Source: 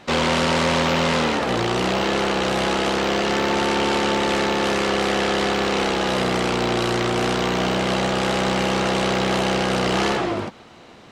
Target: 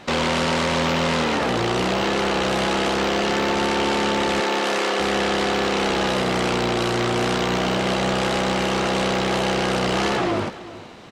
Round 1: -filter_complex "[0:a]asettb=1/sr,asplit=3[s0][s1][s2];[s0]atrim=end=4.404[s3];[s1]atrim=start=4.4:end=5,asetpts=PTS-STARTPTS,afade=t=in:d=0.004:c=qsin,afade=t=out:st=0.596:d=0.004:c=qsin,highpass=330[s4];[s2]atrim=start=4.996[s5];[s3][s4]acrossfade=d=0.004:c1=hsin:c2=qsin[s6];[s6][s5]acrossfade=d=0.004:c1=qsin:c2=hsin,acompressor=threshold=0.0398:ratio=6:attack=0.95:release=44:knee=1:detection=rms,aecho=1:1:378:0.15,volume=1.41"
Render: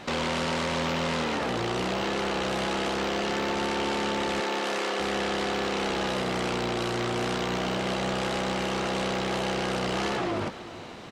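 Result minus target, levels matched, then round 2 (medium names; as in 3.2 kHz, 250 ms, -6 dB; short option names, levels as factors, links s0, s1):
compression: peak gain reduction +7 dB
-filter_complex "[0:a]asettb=1/sr,asplit=3[s0][s1][s2];[s0]atrim=end=4.404[s3];[s1]atrim=start=4.4:end=5,asetpts=PTS-STARTPTS,afade=t=in:d=0.004:c=qsin,afade=t=out:st=0.596:d=0.004:c=qsin,highpass=330[s4];[s2]atrim=start=4.996[s5];[s3][s4]acrossfade=d=0.004:c1=hsin:c2=qsin[s6];[s6][s5]acrossfade=d=0.004:c1=qsin:c2=hsin,acompressor=threshold=0.106:ratio=6:attack=0.95:release=44:knee=1:detection=rms,aecho=1:1:378:0.15,volume=1.41"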